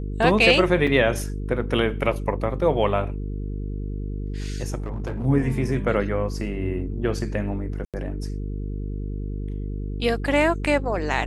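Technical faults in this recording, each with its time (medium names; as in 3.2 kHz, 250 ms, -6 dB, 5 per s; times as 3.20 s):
buzz 50 Hz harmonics 9 -29 dBFS
0.87 s: dropout 4.4 ms
4.78–5.26 s: clipped -24.5 dBFS
7.85–7.94 s: dropout 87 ms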